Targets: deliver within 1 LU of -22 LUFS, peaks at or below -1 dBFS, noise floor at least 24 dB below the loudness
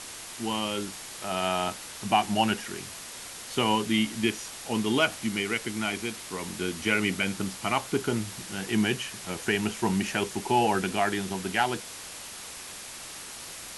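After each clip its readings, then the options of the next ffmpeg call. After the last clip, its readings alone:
noise floor -42 dBFS; noise floor target -53 dBFS; loudness -29.0 LUFS; peak -10.0 dBFS; loudness target -22.0 LUFS
-> -af "afftdn=nr=11:nf=-42"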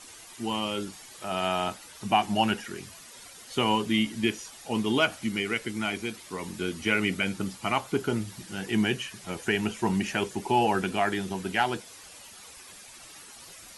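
noise floor -48 dBFS; noise floor target -53 dBFS
-> -af "afftdn=nr=6:nf=-48"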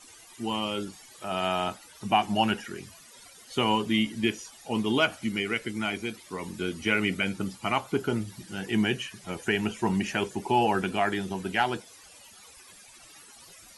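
noise floor -52 dBFS; noise floor target -53 dBFS
-> -af "afftdn=nr=6:nf=-52"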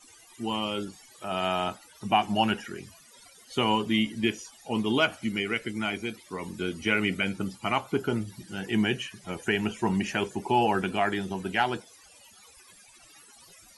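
noise floor -55 dBFS; loudness -28.5 LUFS; peak -10.0 dBFS; loudness target -22.0 LUFS
-> -af "volume=6.5dB"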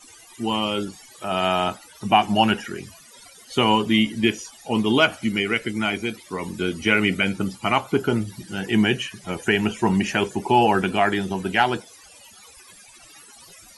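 loudness -22.0 LUFS; peak -3.5 dBFS; noise floor -48 dBFS

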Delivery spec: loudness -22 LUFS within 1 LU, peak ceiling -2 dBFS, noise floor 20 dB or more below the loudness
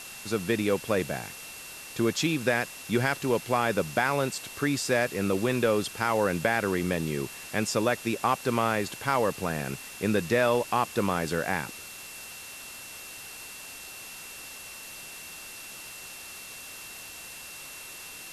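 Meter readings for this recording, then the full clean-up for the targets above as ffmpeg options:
steady tone 2700 Hz; tone level -46 dBFS; noise floor -43 dBFS; noise floor target -48 dBFS; loudness -27.5 LUFS; peak -11.0 dBFS; loudness target -22.0 LUFS
-> -af "bandreject=f=2.7k:w=30"
-af "afftdn=nr=6:nf=-43"
-af "volume=5.5dB"

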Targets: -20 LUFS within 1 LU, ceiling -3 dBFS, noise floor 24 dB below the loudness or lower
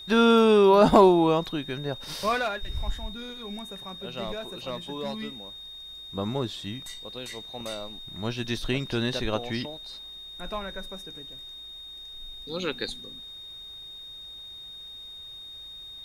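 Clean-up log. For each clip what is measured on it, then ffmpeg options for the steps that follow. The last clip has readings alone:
steady tone 3700 Hz; tone level -40 dBFS; loudness -26.0 LUFS; peak -5.5 dBFS; loudness target -20.0 LUFS
-> -af "bandreject=f=3.7k:w=30"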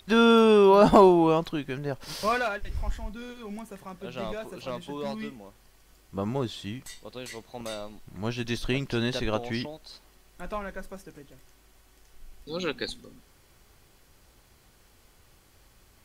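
steady tone none; loudness -25.5 LUFS; peak -5.5 dBFS; loudness target -20.0 LUFS
-> -af "volume=5.5dB,alimiter=limit=-3dB:level=0:latency=1"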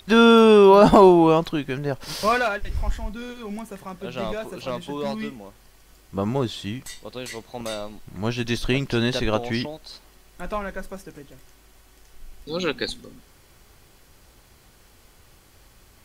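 loudness -20.5 LUFS; peak -3.0 dBFS; noise floor -54 dBFS

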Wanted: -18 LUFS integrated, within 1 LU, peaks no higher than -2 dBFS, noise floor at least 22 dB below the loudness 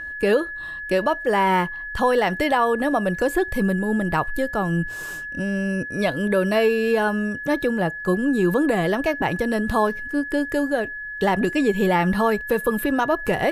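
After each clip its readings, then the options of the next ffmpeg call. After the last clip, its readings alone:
steady tone 1700 Hz; tone level -30 dBFS; loudness -22.0 LUFS; peak -8.0 dBFS; loudness target -18.0 LUFS
-> -af "bandreject=f=1.7k:w=30"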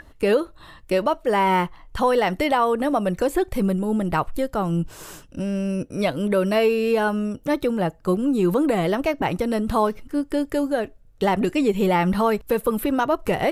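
steady tone none; loudness -22.5 LUFS; peak -8.5 dBFS; loudness target -18.0 LUFS
-> -af "volume=4.5dB"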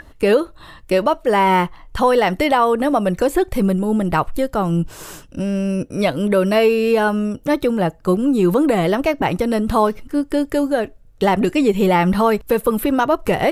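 loudness -18.0 LUFS; peak -4.0 dBFS; noise floor -45 dBFS

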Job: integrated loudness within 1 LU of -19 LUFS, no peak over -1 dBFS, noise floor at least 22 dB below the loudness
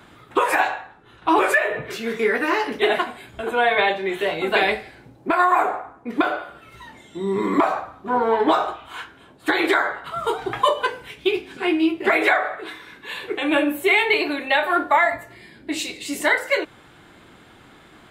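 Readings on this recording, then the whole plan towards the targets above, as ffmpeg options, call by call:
loudness -21.0 LUFS; peak -4.5 dBFS; loudness target -19.0 LUFS
-> -af "volume=2dB"

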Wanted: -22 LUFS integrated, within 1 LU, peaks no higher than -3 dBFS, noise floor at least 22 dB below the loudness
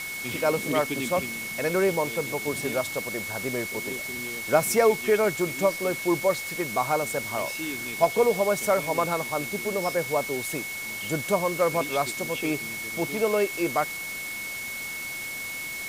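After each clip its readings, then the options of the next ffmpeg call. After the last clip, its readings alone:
steady tone 2200 Hz; tone level -33 dBFS; noise floor -35 dBFS; noise floor target -49 dBFS; loudness -26.5 LUFS; peak -6.5 dBFS; loudness target -22.0 LUFS
-> -af "bandreject=f=2.2k:w=30"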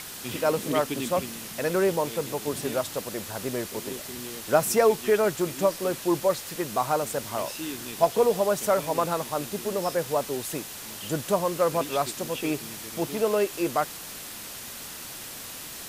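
steady tone none; noise floor -40 dBFS; noise floor target -50 dBFS
-> -af "afftdn=nr=10:nf=-40"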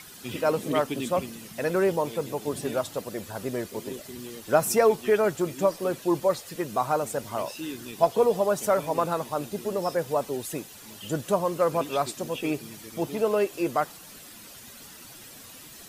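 noise floor -46 dBFS; noise floor target -49 dBFS
-> -af "afftdn=nr=6:nf=-46"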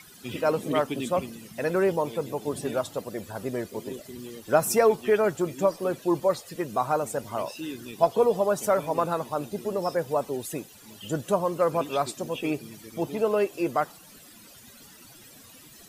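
noise floor -50 dBFS; loudness -27.0 LUFS; peak -6.5 dBFS; loudness target -22.0 LUFS
-> -af "volume=5dB,alimiter=limit=-3dB:level=0:latency=1"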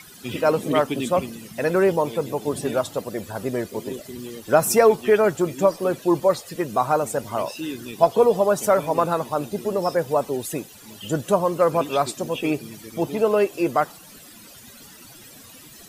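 loudness -22.0 LUFS; peak -3.0 dBFS; noise floor -45 dBFS

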